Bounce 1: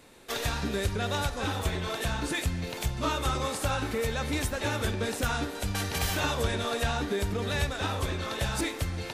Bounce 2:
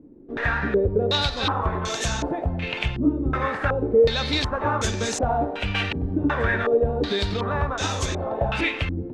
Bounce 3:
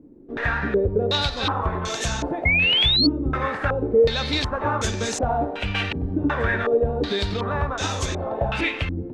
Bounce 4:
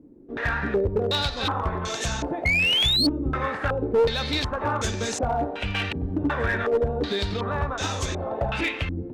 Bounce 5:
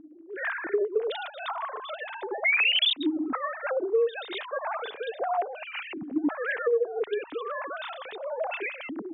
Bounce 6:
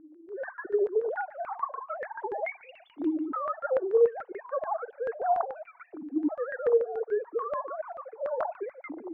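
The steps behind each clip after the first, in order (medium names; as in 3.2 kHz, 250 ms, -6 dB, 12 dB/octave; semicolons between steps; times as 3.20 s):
step-sequenced low-pass 2.7 Hz 300–6500 Hz; trim +4 dB
painted sound rise, 2.45–3.07 s, 2.1–4.5 kHz -19 dBFS
one-sided clip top -16.5 dBFS; trim -2 dB
formants replaced by sine waves; compression 3:1, threshold -23 dBFS, peak gain reduction 8 dB
formants replaced by sine waves; feedback echo behind a high-pass 125 ms, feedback 67%, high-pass 2.3 kHz, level -22.5 dB; LFO low-pass saw down 6.9 Hz 580–1600 Hz; trim -3.5 dB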